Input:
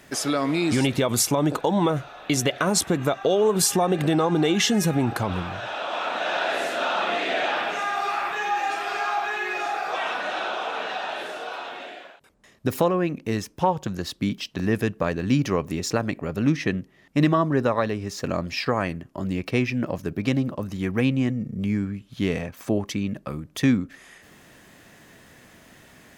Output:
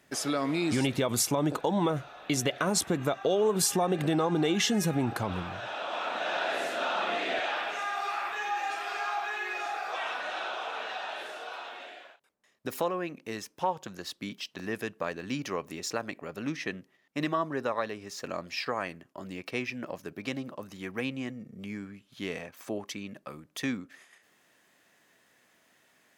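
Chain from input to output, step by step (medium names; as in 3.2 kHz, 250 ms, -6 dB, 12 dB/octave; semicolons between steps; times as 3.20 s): gate -47 dBFS, range -7 dB; high-pass 69 Hz 6 dB/octave, from 7.39 s 540 Hz; trim -5.5 dB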